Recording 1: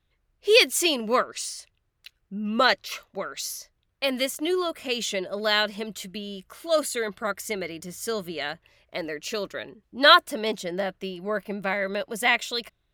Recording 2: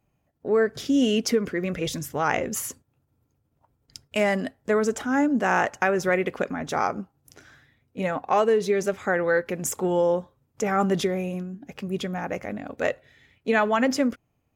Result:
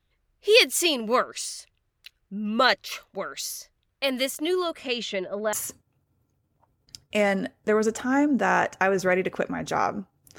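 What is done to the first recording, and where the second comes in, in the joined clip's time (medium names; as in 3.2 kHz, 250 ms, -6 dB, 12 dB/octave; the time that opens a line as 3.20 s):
recording 1
4.64–5.53 s: low-pass 12 kHz -> 1.2 kHz
5.53 s: go over to recording 2 from 2.54 s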